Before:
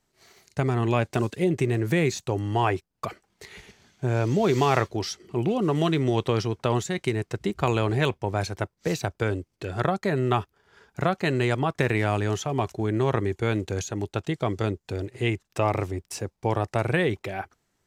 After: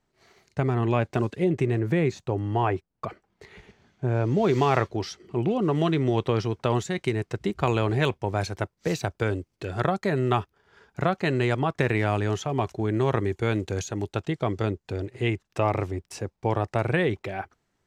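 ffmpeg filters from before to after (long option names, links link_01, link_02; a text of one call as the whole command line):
ffmpeg -i in.wav -af "asetnsamples=nb_out_samples=441:pad=0,asendcmd='1.79 lowpass f 1500;4.37 lowpass f 3200;6.43 lowpass f 5700;8.01 lowpass f 9200;10.4 lowpass f 5000;12.9 lowpass f 9000;14.24 lowpass f 4100',lowpass=frequency=2500:poles=1" out.wav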